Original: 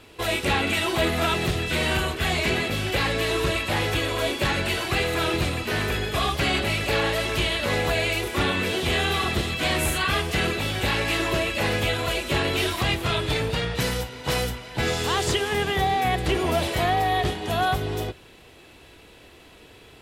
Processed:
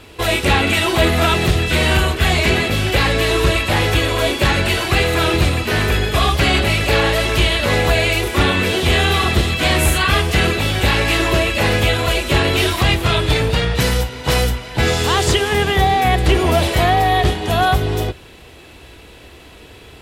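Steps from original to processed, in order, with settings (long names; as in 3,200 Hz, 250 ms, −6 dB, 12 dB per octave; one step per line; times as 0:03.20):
parametric band 63 Hz +6.5 dB 1.1 octaves
level +7.5 dB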